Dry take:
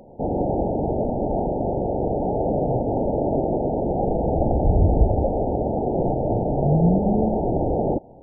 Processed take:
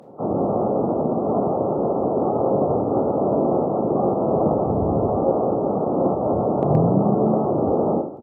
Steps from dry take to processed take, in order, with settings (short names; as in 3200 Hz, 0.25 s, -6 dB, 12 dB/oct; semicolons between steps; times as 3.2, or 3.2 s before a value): Bessel high-pass 170 Hz, order 6; on a send at -1 dB: reverb RT60 0.60 s, pre-delay 17 ms; on the sum: harmoniser -7 st -9 dB, -4 st -8 dB, +7 st -12 dB; added harmonics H 2 -37 dB, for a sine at -6 dBFS